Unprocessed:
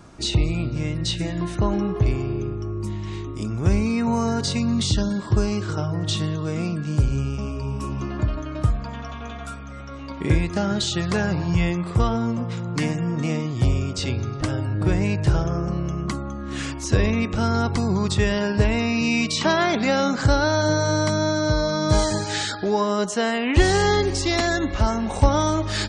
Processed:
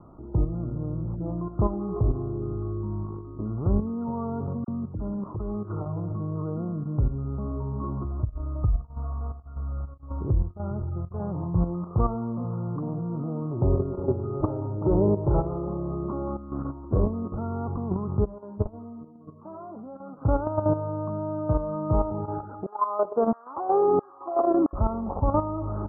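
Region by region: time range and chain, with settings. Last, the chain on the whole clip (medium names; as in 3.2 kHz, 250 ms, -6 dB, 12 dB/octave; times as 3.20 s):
4.64–6.14 s: compression 5:1, threshold -25 dBFS + companded quantiser 8-bit + phase dispersion lows, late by 41 ms, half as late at 1.3 kHz
8.04–11.20 s: resonant low shelf 130 Hz +10.5 dB, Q 1.5 + compression 10:1, threshold -10 dBFS + tremolo of two beating tones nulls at 1.8 Hz
13.51–16.37 s: small resonant body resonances 390/580/860/1900 Hz, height 12 dB, ringing for 50 ms + delay 178 ms -16.5 dB
18.25–20.25 s: peaking EQ 130 Hz -9 dB 0.23 oct + level held to a coarse grid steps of 17 dB + flange 1.1 Hz, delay 5.6 ms, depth 5.1 ms, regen -22%
22.66–24.73 s: treble shelf 4.8 kHz +3.5 dB + LFO high-pass saw down 1.5 Hz 220–2100 Hz
whole clip: steep low-pass 1.3 kHz 96 dB/octave; level held to a coarse grid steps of 10 dB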